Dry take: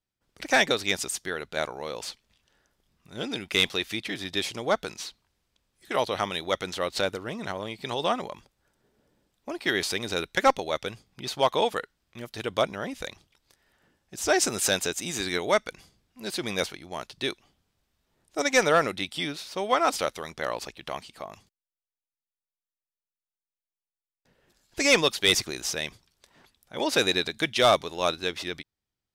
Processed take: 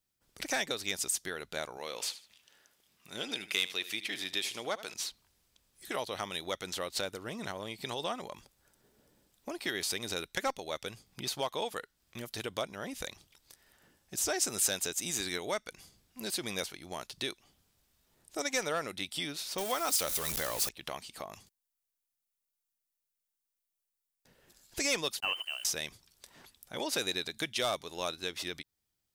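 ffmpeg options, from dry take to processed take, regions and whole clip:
ffmpeg -i in.wav -filter_complex "[0:a]asettb=1/sr,asplit=3[link_01][link_02][link_03];[link_01]atrim=end=1.774[link_04];[link_02]atrim=start=1.77:end=4.94,asetpts=PTS-STARTPTS,afade=type=in:duration=0.004:curve=qsin,afade=type=out:start_time=3.166:duration=0.004:curve=qsin,highpass=frequency=310:poles=1,equalizer=frequency=2600:width_type=o:width=1.1:gain=4.5,aecho=1:1:76|152:0.158|0.0349,atrim=end_sample=139797[link_05];[link_03]atrim=start=4.936[link_06];[link_04][link_05]acrossfade=duration=0.004:curve1=hsin:curve2=qsin[link_07];[link_07][link_06]acrossfade=duration=0.004:curve1=qsin:curve2=hsin,asettb=1/sr,asplit=3[link_08][link_09][link_10];[link_08]atrim=end=19.584[link_11];[link_09]atrim=start=19.58:end=20.69,asetpts=PTS-STARTPTS,afade=type=in:duration=0.004:curve=qsin,afade=type=out:start_time=1.106:duration=0.004:curve=qsin,aeval=exprs='val(0)+0.5*0.0266*sgn(val(0))':channel_layout=same,highshelf=frequency=5000:gain=9[link_12];[link_10]atrim=start=20.686[link_13];[link_11][link_12]acrossfade=duration=0.004:curve1=hsin:curve2=qsin[link_14];[link_14][link_13]acrossfade=duration=0.004:curve1=qsin:curve2=hsin,asettb=1/sr,asplit=3[link_15][link_16][link_17];[link_15]atrim=end=25.204[link_18];[link_16]atrim=start=25.2:end=25.65,asetpts=PTS-STARTPTS,afade=type=in:duration=0.004:curve=qsin,afade=type=out:start_time=0.446:duration=0.004:curve=qsin,aemphasis=mode=reproduction:type=bsi,lowpass=frequency=2600:width_type=q:width=0.5098,lowpass=frequency=2600:width_type=q:width=0.6013,lowpass=frequency=2600:width_type=q:width=0.9,lowpass=frequency=2600:width_type=q:width=2.563,afreqshift=-3100,aeval=exprs='sgn(val(0))*max(abs(val(0))-0.00282,0)':channel_layout=same[link_19];[link_17]atrim=start=25.646[link_20];[link_18][link_19]acrossfade=duration=0.004:curve1=hsin:curve2=qsin[link_21];[link_21][link_20]acrossfade=duration=0.004:curve1=qsin:curve2=hsin,acompressor=threshold=-41dB:ratio=2,highshelf=frequency=5900:gain=11.5" out.wav

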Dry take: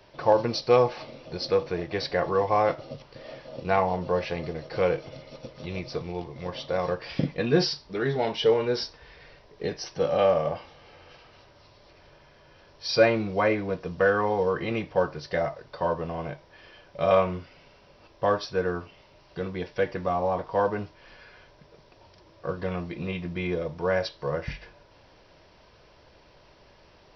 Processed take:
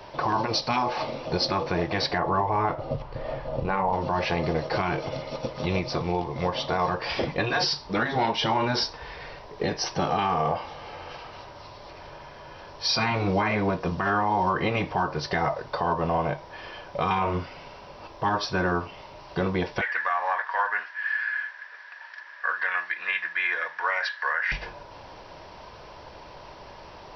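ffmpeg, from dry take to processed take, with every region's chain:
ffmpeg -i in.wav -filter_complex "[0:a]asettb=1/sr,asplit=3[link_01][link_02][link_03];[link_01]atrim=end=2.184[link_04];[link_02]atrim=start=2.18:end=3.93,asetpts=PTS-STARTPTS,afade=type=in:duration=0.004:curve=qsin,afade=type=out:start_time=1.746:duration=0.004:curve=qsin,lowpass=frequency=1300:poles=1,asubboost=boost=10.5:cutoff=110[link_05];[link_03]atrim=start=3.926[link_06];[link_04][link_05]acrossfade=duration=0.004:curve1=hsin:curve2=qsin[link_07];[link_07][link_06]acrossfade=duration=0.004:curve1=qsin:curve2=hsin,asettb=1/sr,asplit=3[link_08][link_09][link_10];[link_08]atrim=end=19.814[link_11];[link_09]atrim=start=19.81:end=24.52,asetpts=PTS-STARTPTS,afade=type=in:duration=0.004:curve=qsin,afade=type=out:start_time=4.706:duration=0.004:curve=qsin,highpass=frequency=1700:width_type=q:width=16,highshelf=frequency=3300:gain=-10[link_12];[link_10]atrim=start=24.516[link_13];[link_11][link_12]acrossfade=duration=0.004:curve1=hsin:curve2=qsin[link_14];[link_14][link_13]acrossfade=duration=0.004:curve1=qsin:curve2=hsin,afftfilt=real='re*lt(hypot(re,im),0.251)':imag='im*lt(hypot(re,im),0.251)':win_size=1024:overlap=0.75,equalizer=frequency=910:width=1.6:gain=8,alimiter=limit=-23.5dB:level=0:latency=1:release=204,volume=8.5dB" out.wav

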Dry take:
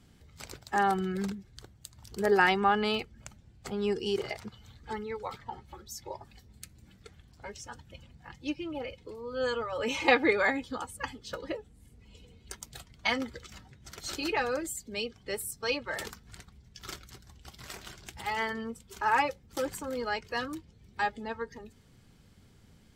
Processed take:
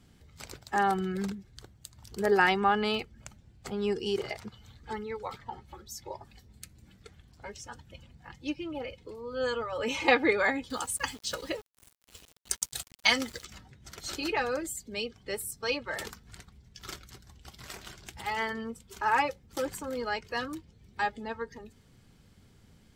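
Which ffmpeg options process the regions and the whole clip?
ffmpeg -i in.wav -filter_complex "[0:a]asettb=1/sr,asplit=3[link_01][link_02][link_03];[link_01]atrim=end=10.704[link_04];[link_02]atrim=start=10.7:end=13.45,asetpts=PTS-STARTPTS,afade=type=in:duration=0.004:curve=qsin,afade=type=out:start_time=2.746:duration=0.004:curve=qsin,equalizer=frequency=9100:width=0.31:gain=14,aeval=exprs='val(0)*gte(abs(val(0)),0.00473)':channel_layout=same[link_05];[link_03]atrim=start=13.446[link_06];[link_04][link_05]acrossfade=duration=0.004:curve1=hsin:curve2=qsin[link_07];[link_07][link_06]acrossfade=duration=0.004:curve1=qsin:curve2=hsin" out.wav

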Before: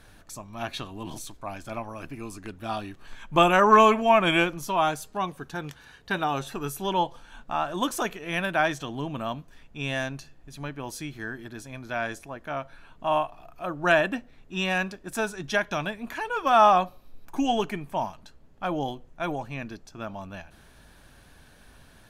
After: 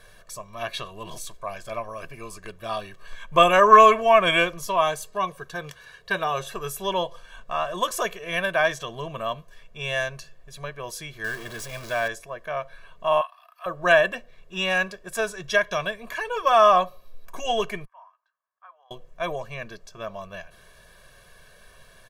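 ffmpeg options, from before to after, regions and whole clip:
ffmpeg -i in.wav -filter_complex "[0:a]asettb=1/sr,asplit=3[link_01][link_02][link_03];[link_01]atrim=end=11.244[link_04];[link_02]atrim=start=11.24:end=12.08,asetpts=PTS-STARTPTS,afade=type=in:duration=0.004:curve=qsin,afade=type=out:start_time=0.836:duration=0.004:curve=qsin,aeval=exprs='val(0)+0.5*0.0168*sgn(val(0))':channel_layout=same,acrusher=bits=8:mix=0:aa=0.5[link_05];[link_03]atrim=start=12.076[link_06];[link_04][link_05]acrossfade=duration=0.004:curve1=hsin:curve2=qsin[link_07];[link_07][link_06]acrossfade=duration=0.004:curve1=qsin:curve2=hsin,asettb=1/sr,asplit=3[link_08][link_09][link_10];[link_08]atrim=end=13.214[link_11];[link_09]atrim=start=13.21:end=13.66,asetpts=PTS-STARTPTS,afade=type=in:duration=0.004:curve=qsin,afade=type=out:start_time=0.446:duration=0.004:curve=qsin,highpass=frequency=1000:width=0.5412,highpass=frequency=1000:width=1.3066,equalizer=frequency=6800:width_type=o:width=0.37:gain=-14.5,bandreject=frequency=2300:width=14[link_12];[link_10]atrim=start=13.656[link_13];[link_11][link_12]acrossfade=duration=0.004:curve1=hsin:curve2=qsin[link_14];[link_14][link_13]acrossfade=duration=0.004:curve1=qsin:curve2=hsin,asettb=1/sr,asplit=3[link_15][link_16][link_17];[link_15]atrim=end=17.854[link_18];[link_16]atrim=start=17.85:end=18.91,asetpts=PTS-STARTPTS,afade=type=in:duration=0.004:curve=qsin,afade=type=out:start_time=1.056:duration=0.004:curve=qsin,asuperpass=centerf=1100:order=4:qfactor=1.6,aderivative[link_19];[link_17]atrim=start=18.906[link_20];[link_18][link_19]acrossfade=duration=0.004:curve1=hsin:curve2=qsin[link_21];[link_21][link_20]acrossfade=duration=0.004:curve1=qsin:curve2=hsin,equalizer=frequency=66:width_type=o:width=2.2:gain=-11,aecho=1:1:1.8:0.97" out.wav

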